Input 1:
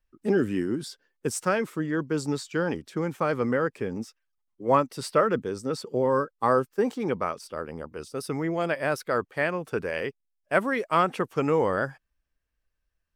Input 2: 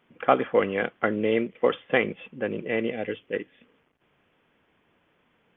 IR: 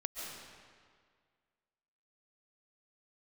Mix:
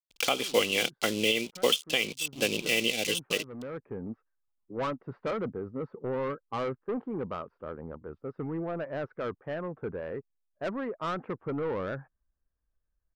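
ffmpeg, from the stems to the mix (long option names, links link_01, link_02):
-filter_complex "[0:a]lowpass=frequency=1500:width=0.5412,lowpass=frequency=1500:width=1.3066,lowshelf=frequency=240:gain=4.5,asoftclip=type=tanh:threshold=-22dB,adelay=100,volume=-5dB[link_01];[1:a]aeval=exprs='sgn(val(0))*max(abs(val(0))-0.00422,0)':channel_layout=same,aexciter=amount=10.7:drive=8.8:freq=2700,volume=0dB,asplit=2[link_02][link_03];[link_03]apad=whole_len=584578[link_04];[link_01][link_04]sidechaincompress=threshold=-26dB:ratio=4:attack=5.8:release=1040[link_05];[link_05][link_02]amix=inputs=2:normalize=0,alimiter=limit=-13dB:level=0:latency=1:release=422"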